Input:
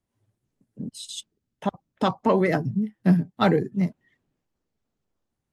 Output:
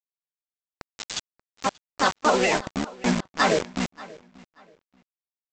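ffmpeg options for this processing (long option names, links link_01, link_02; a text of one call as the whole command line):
ffmpeg -i in.wav -filter_complex "[0:a]highpass=frequency=730:poles=1,asplit=2[link_01][link_02];[link_02]asetrate=58866,aresample=44100,atempo=0.749154,volume=0dB[link_03];[link_01][link_03]amix=inputs=2:normalize=0,aresample=16000,acrusher=bits=4:mix=0:aa=0.000001,aresample=44100,asplit=2[link_04][link_05];[link_05]adelay=583,lowpass=frequency=4900:poles=1,volume=-22dB,asplit=2[link_06][link_07];[link_07]adelay=583,lowpass=frequency=4900:poles=1,volume=0.26[link_08];[link_04][link_06][link_08]amix=inputs=3:normalize=0,alimiter=level_in=11dB:limit=-1dB:release=50:level=0:latency=1,volume=-8dB" out.wav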